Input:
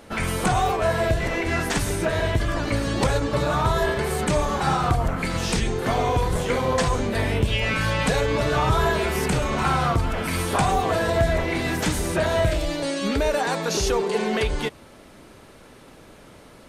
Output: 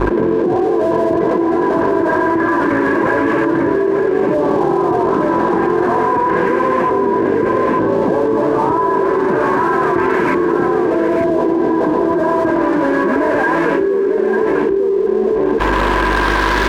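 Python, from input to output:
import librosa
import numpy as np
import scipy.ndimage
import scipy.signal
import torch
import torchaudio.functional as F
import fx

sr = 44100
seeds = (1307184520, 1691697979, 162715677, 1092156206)

y = fx.delta_mod(x, sr, bps=16000, step_db=-34.5)
y = fx.filter_lfo_lowpass(y, sr, shape='saw_up', hz=0.29, low_hz=410.0, high_hz=2400.0, q=1.5)
y = np.sign(y) * np.maximum(np.abs(y) - 10.0 ** (-39.5 / 20.0), 0.0)
y = scipy.signal.sosfilt(scipy.signal.butter(2, 220.0, 'highpass', fs=sr, output='sos'), y)
y = fx.small_body(y, sr, hz=(350.0, 1000.0, 1600.0), ring_ms=35, db=15)
y = fx.add_hum(y, sr, base_hz=50, snr_db=35)
y = y + 10.0 ** (-5.5 / 20.0) * np.pad(y, (int(896 * sr / 1000.0), 0))[:len(y)]
y = fx.env_flatten(y, sr, amount_pct=100)
y = y * 10.0 ** (-4.0 / 20.0)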